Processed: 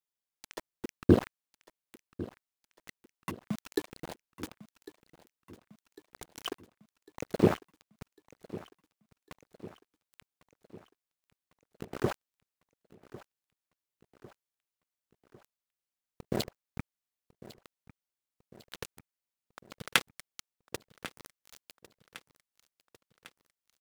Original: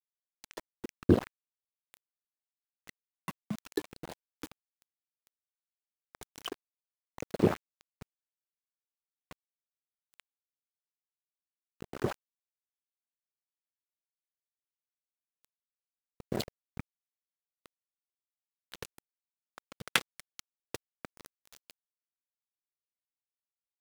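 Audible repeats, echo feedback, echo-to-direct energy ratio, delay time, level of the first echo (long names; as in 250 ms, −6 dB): 4, 57%, −16.5 dB, 1,101 ms, −18.0 dB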